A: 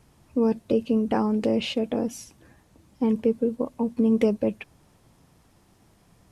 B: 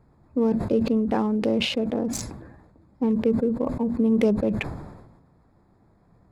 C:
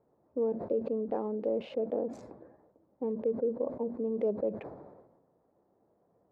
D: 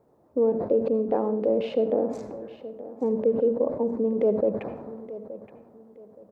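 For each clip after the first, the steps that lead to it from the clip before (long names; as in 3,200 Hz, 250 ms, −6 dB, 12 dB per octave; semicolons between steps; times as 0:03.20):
adaptive Wiener filter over 15 samples; level that may fall only so fast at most 48 dB per second
brickwall limiter −16.5 dBFS, peak gain reduction 6 dB; resonant band-pass 520 Hz, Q 2.1; level −1.5 dB
repeating echo 872 ms, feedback 29%, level −15.5 dB; convolution reverb RT60 0.50 s, pre-delay 68 ms, DRR 13 dB; level +8 dB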